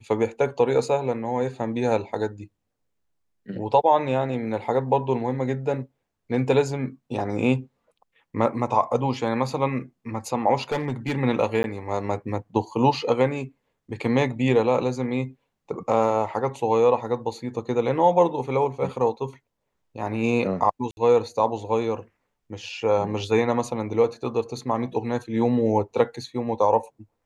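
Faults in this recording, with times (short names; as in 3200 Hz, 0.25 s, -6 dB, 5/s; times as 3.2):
10.72–11.15 clipped -20.5 dBFS
11.63–11.64 gap 11 ms
20.91–20.97 gap 61 ms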